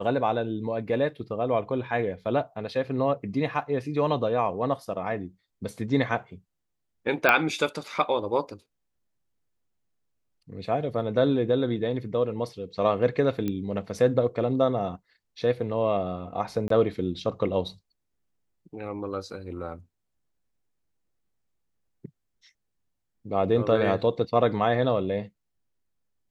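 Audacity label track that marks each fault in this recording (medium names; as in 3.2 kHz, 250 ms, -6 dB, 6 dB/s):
7.290000	7.290000	pop -7 dBFS
13.480000	13.480000	pop -17 dBFS
16.680000	16.700000	dropout 23 ms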